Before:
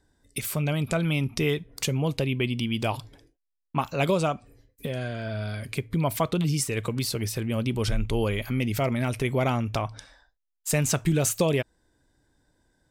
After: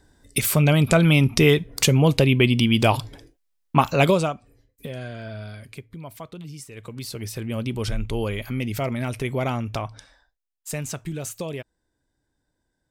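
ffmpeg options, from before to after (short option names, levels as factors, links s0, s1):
-af "volume=11.9,afade=t=out:st=3.91:d=0.43:silence=0.266073,afade=t=out:st=5.22:d=0.75:silence=0.298538,afade=t=in:st=6.72:d=0.79:silence=0.237137,afade=t=out:st=9.76:d=1.27:silence=0.421697"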